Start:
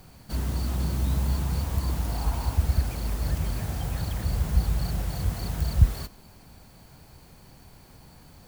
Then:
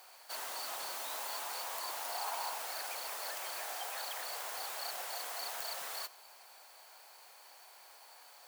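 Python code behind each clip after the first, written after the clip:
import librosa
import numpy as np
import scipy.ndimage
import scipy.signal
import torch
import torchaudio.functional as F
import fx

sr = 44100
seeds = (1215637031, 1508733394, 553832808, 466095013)

y = scipy.signal.sosfilt(scipy.signal.butter(4, 640.0, 'highpass', fs=sr, output='sos'), x)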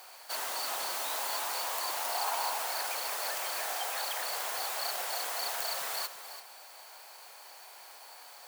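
y = x + 10.0 ** (-11.5 / 20.0) * np.pad(x, (int(337 * sr / 1000.0), 0))[:len(x)]
y = F.gain(torch.from_numpy(y), 6.0).numpy()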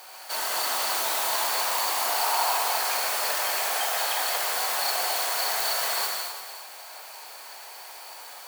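y = fx.rev_gated(x, sr, seeds[0], gate_ms=280, shape='flat', drr_db=-1.5)
y = F.gain(torch.from_numpy(y), 4.5).numpy()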